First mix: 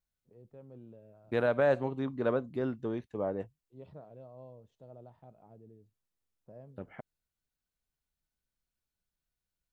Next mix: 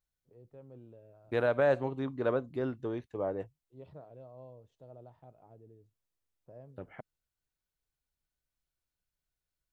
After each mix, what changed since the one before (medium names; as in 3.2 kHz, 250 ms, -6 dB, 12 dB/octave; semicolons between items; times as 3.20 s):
master: add peaking EQ 210 Hz -10 dB 0.25 oct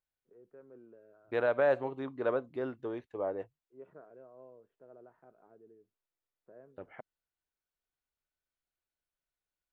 first voice: add cabinet simulation 190–2200 Hz, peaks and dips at 200 Hz +7 dB, 390 Hz +5 dB, 570 Hz -4 dB, 830 Hz -7 dB, 1.5 kHz +10 dB; master: add tone controls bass -10 dB, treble -9 dB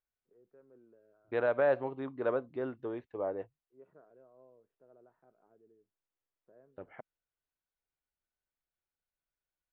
first voice -6.0 dB; master: add distance through air 160 m